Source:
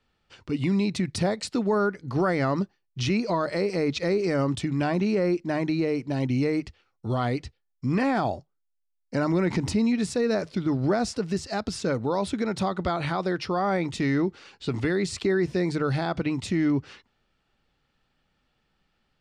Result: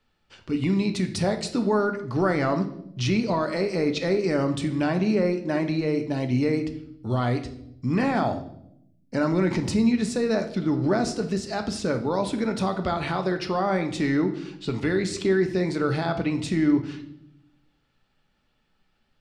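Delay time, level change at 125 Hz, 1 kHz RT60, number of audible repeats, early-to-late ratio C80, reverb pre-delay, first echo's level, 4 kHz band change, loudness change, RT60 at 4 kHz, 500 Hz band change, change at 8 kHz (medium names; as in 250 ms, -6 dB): no echo, +1.0 dB, 0.65 s, no echo, 15.0 dB, 3 ms, no echo, +1.0 dB, +1.5 dB, 0.65 s, +1.5 dB, +1.0 dB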